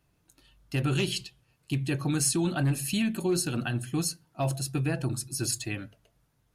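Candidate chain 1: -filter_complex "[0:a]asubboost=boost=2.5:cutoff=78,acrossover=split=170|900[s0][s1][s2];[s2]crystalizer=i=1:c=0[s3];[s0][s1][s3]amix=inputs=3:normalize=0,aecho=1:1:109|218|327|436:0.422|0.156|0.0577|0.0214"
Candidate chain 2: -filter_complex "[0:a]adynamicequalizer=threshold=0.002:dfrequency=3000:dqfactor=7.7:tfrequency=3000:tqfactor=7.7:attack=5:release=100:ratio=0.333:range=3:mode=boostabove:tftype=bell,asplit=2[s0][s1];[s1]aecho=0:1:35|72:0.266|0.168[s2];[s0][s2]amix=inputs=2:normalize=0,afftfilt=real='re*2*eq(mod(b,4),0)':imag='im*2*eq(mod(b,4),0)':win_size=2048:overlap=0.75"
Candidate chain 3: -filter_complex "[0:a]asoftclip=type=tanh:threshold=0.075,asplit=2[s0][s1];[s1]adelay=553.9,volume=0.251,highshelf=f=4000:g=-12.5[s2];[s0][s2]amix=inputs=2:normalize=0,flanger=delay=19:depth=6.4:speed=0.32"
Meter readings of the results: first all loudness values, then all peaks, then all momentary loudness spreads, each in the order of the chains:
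-26.5 LUFS, -32.0 LUFS, -34.0 LUFS; -9.5 dBFS, -14.5 dBFS, -22.5 dBFS; 12 LU, 12 LU, 11 LU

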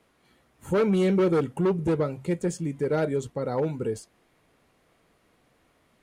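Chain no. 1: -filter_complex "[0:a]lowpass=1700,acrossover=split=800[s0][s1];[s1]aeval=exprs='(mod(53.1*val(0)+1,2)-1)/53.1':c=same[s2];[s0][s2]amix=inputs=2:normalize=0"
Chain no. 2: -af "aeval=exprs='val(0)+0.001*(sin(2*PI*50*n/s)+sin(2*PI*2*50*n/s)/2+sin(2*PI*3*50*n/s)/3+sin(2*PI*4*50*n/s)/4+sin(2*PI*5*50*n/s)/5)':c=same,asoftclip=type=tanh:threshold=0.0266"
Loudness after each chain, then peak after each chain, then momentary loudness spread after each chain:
-26.5 LUFS, -35.5 LUFS; -15.5 dBFS, -31.5 dBFS; 8 LU, 6 LU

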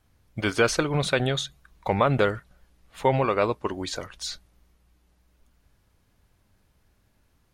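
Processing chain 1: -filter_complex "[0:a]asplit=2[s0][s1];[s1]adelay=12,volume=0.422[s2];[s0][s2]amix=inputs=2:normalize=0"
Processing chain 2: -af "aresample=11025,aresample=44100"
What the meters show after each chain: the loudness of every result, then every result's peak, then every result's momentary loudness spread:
-25.5 LUFS, -26.0 LUFS; -8.5 dBFS, -8.5 dBFS; 13 LU, 14 LU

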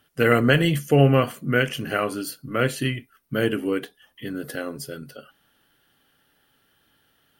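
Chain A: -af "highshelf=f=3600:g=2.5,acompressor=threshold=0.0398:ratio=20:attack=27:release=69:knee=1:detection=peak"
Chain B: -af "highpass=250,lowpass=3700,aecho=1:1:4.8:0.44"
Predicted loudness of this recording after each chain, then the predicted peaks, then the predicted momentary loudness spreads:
-30.5 LUFS, -24.0 LUFS; -12.5 dBFS, -5.0 dBFS; 8 LU, 19 LU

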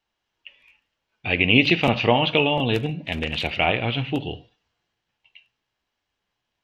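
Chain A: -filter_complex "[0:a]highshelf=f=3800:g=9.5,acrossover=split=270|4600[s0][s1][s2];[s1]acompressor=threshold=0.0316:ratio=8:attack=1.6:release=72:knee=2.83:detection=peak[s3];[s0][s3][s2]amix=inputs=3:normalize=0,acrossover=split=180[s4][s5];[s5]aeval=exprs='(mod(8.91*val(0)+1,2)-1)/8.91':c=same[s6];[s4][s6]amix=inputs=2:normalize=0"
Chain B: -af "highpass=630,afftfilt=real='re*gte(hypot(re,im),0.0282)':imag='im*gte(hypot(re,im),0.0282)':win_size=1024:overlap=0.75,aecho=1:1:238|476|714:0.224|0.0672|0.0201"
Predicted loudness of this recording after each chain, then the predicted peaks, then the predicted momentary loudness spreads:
-27.0 LUFS, -22.5 LUFS; -13.0 dBFS, -4.5 dBFS; 18 LU, 16 LU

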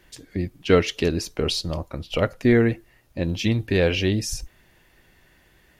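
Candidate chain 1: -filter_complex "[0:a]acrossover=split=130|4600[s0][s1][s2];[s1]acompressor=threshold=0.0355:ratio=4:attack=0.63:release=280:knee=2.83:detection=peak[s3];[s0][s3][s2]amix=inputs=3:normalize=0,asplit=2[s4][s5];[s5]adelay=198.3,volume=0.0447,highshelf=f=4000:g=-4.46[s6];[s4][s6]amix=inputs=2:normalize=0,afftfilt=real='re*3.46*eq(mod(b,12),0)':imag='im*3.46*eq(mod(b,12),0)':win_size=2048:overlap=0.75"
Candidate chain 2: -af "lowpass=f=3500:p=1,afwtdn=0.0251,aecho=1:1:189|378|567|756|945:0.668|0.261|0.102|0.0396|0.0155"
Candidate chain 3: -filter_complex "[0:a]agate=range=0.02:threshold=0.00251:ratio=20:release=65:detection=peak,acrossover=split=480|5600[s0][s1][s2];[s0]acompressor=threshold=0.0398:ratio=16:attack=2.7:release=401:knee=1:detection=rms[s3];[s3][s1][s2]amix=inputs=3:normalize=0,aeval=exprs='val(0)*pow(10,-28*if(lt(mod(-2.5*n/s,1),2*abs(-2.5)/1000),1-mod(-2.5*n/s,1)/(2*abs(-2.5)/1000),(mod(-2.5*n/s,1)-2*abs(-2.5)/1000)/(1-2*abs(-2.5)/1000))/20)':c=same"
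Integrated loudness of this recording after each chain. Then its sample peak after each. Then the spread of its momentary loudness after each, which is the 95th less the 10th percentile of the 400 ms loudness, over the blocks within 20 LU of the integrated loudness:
-36.0 LUFS, -22.0 LUFS, -35.0 LUFS; -21.0 dBFS, -6.0 dBFS, -12.0 dBFS; 12 LU, 12 LU, 14 LU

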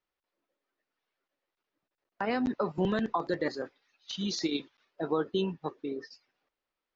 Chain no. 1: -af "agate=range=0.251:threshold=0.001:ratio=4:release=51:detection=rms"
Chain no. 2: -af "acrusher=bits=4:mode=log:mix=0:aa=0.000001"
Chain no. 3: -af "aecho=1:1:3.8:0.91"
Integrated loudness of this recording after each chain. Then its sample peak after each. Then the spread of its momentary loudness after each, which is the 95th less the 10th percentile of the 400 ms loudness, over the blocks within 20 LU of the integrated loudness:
-33.0 LUFS, -32.5 LUFS, -30.0 LUFS; -17.5 dBFS, -17.5 dBFS, -14.0 dBFS; 11 LU, 11 LU, 12 LU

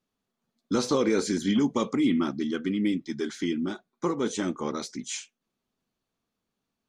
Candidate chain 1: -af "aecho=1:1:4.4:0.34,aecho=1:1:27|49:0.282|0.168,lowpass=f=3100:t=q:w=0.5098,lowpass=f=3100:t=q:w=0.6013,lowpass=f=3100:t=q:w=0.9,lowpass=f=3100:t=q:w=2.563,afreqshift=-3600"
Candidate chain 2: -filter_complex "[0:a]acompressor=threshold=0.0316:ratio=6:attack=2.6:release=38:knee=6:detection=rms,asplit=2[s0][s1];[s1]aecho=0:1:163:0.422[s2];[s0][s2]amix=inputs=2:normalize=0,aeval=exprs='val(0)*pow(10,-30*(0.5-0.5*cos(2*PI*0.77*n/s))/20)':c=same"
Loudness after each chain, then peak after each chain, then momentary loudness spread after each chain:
-23.0 LUFS, -40.0 LUFS; -11.0 dBFS, -23.0 dBFS; 10 LU, 19 LU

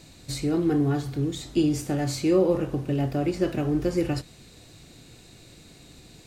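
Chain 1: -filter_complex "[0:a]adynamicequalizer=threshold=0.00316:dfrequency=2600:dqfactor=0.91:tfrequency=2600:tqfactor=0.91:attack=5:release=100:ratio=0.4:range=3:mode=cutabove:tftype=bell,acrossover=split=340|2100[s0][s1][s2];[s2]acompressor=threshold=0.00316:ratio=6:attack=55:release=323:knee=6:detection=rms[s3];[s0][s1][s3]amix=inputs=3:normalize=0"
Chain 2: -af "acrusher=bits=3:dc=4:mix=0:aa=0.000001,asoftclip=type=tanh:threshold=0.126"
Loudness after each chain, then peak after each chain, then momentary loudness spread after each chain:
-26.0 LUFS, -32.0 LUFS; -11.0 dBFS, -18.0 dBFS; 8 LU, 5 LU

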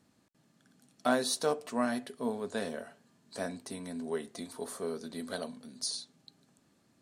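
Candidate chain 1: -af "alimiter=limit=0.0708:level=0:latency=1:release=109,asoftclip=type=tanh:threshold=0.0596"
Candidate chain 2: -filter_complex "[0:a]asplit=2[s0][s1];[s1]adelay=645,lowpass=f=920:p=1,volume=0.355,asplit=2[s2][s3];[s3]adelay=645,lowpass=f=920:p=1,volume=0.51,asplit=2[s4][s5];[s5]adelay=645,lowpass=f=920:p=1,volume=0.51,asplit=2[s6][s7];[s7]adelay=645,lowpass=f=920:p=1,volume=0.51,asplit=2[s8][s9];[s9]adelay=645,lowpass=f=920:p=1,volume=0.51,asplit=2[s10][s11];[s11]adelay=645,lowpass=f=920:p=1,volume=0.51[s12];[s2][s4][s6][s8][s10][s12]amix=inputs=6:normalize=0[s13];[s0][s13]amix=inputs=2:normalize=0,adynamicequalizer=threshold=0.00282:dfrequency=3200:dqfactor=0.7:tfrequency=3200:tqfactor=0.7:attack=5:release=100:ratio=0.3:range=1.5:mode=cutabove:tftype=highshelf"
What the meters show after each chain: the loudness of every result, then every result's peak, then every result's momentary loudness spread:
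-38.5 LUFS, -35.5 LUFS; -26.0 dBFS, -13.5 dBFS; 9 LU, 14 LU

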